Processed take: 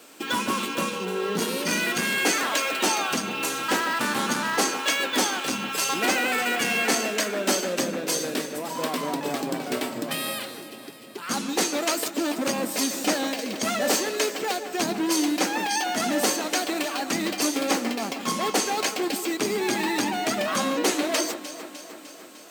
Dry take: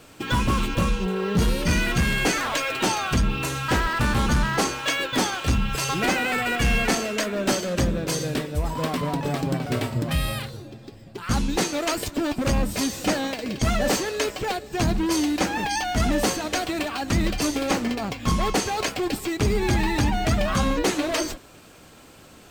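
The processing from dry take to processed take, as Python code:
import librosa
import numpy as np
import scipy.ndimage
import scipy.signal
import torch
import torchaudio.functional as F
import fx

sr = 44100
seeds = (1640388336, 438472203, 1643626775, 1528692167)

y = scipy.signal.sosfilt(scipy.signal.butter(4, 230.0, 'highpass', fs=sr, output='sos'), x)
y = fx.high_shelf(y, sr, hz=5500.0, db=6.5)
y = fx.echo_alternate(y, sr, ms=151, hz=2300.0, feedback_pct=79, wet_db=-11.5)
y = y * 10.0 ** (-1.0 / 20.0)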